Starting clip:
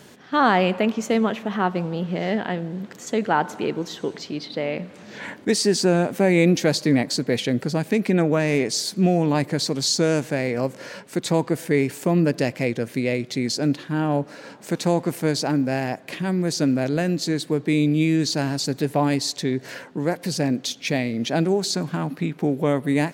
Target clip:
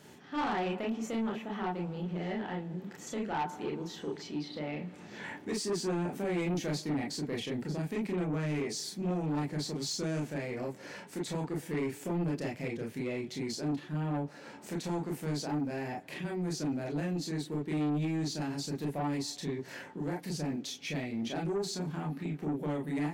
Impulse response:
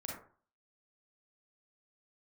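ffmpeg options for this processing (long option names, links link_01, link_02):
-filter_complex "[0:a]asplit=2[link_01][link_02];[link_02]acompressor=threshold=-32dB:ratio=6,volume=2dB[link_03];[link_01][link_03]amix=inputs=2:normalize=0[link_04];[1:a]atrim=start_sample=2205,atrim=end_sample=3087,asetrate=61740,aresample=44100[link_05];[link_04][link_05]afir=irnorm=-1:irlink=0,asoftclip=type=tanh:threshold=-18.5dB,volume=-9dB"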